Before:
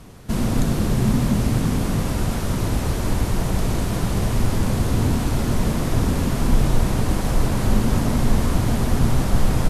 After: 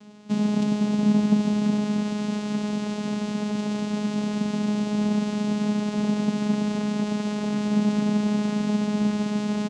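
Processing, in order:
high-shelf EQ 2,800 Hz +12 dB
comb filter 4.3 ms, depth 45%
channel vocoder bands 4, saw 209 Hz
level −2 dB

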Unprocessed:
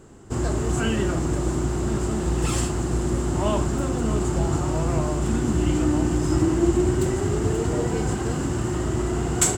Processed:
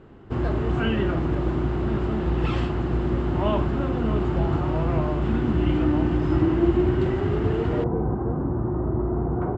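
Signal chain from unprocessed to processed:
low-pass filter 3,400 Hz 24 dB per octave, from 0:07.84 1,100 Hz

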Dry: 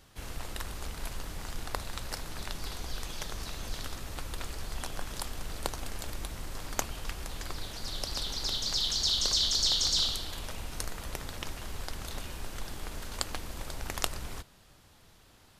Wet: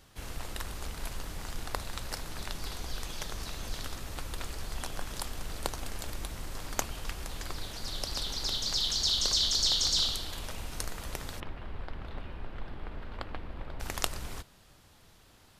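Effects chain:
0:11.40–0:13.80: high-frequency loss of the air 440 metres

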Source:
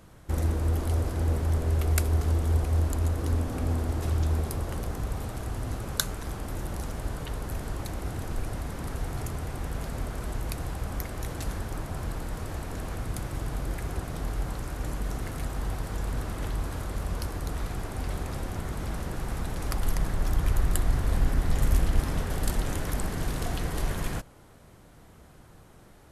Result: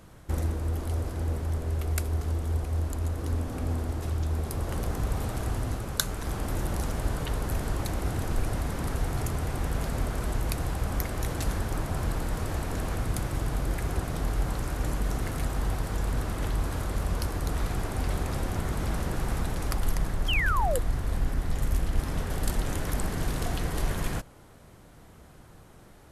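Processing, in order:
speech leveller within 4 dB 0.5 s
sound drawn into the spectrogram fall, 0:20.28–0:20.79, 460–3,300 Hz −28 dBFS

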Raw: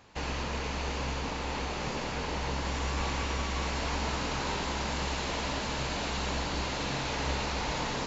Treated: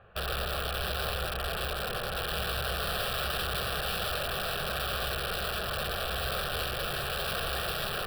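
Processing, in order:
low-pass filter 2,300 Hz 24 dB per octave
wrap-around overflow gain 29 dB
phaser with its sweep stopped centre 1,400 Hz, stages 8
level +5 dB

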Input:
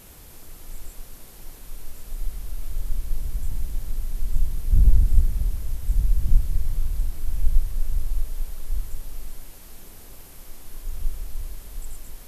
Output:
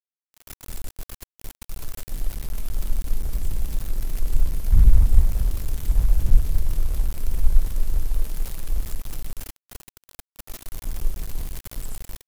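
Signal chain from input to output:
centre clipping without the shift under −33 dBFS
level +2 dB

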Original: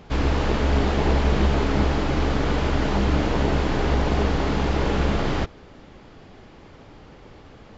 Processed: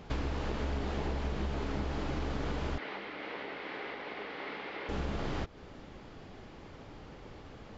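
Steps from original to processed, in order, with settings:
downward compressor 6 to 1, threshold −28 dBFS, peak gain reduction 12.5 dB
0:02.78–0:04.89: loudspeaker in its box 460–4,100 Hz, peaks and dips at 660 Hz −4 dB, 950 Hz −3 dB, 2,100 Hz +8 dB
level −3.5 dB

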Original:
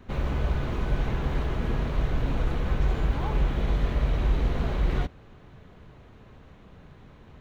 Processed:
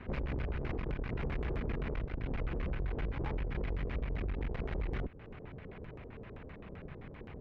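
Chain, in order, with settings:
dynamic equaliser 660 Hz, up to −3 dB, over −46 dBFS, Q 1
downward compressor 6 to 1, threshold −33 dBFS, peak gain reduction 14.5 dB
auto-filter low-pass square 7.7 Hz 460–2,300 Hz
tube saturation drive 35 dB, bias 0.7
level +5 dB

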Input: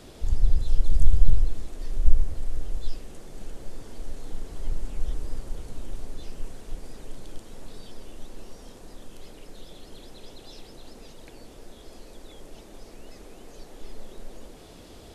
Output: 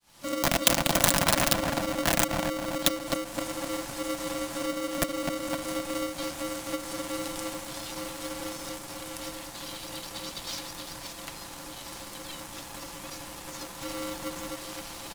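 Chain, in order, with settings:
fade in at the beginning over 0.51 s
wrap-around overflow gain 14 dB
comb filter 6 ms, depth 38%
feedback echo with a low-pass in the loop 255 ms, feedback 53%, low-pass 810 Hz, level −4 dB
downward compressor 10 to 1, threshold −23 dBFS, peak gain reduction 14 dB
spectral tilt +2.5 dB per octave
leveller curve on the samples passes 1
frequency shifter +100 Hz
ring modulator with a square carrier 420 Hz
level +4.5 dB

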